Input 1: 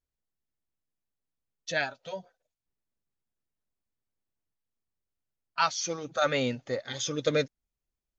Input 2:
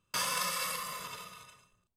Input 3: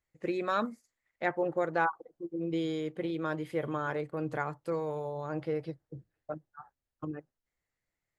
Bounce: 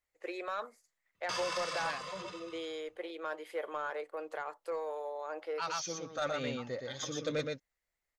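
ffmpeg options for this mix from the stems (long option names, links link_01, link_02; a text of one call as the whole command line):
ffmpeg -i stem1.wav -i stem2.wav -i stem3.wav -filter_complex "[0:a]volume=-7dB,asplit=2[link_01][link_02];[link_02]volume=-4.5dB[link_03];[1:a]lowpass=frequency=6400:width=0.5412,lowpass=frequency=6400:width=1.3066,adelay=1150,volume=-3dB[link_04];[2:a]highpass=frequency=470:width=0.5412,highpass=frequency=470:width=1.3066,alimiter=level_in=0.5dB:limit=-24dB:level=0:latency=1:release=106,volume=-0.5dB,volume=-0.5dB,asplit=2[link_05][link_06];[link_06]apad=whole_len=360749[link_07];[link_01][link_07]sidechaincompress=threshold=-40dB:ratio=8:attack=9:release=255[link_08];[link_03]aecho=0:1:119:1[link_09];[link_08][link_04][link_05][link_09]amix=inputs=4:normalize=0,asoftclip=type=tanh:threshold=-25.5dB" out.wav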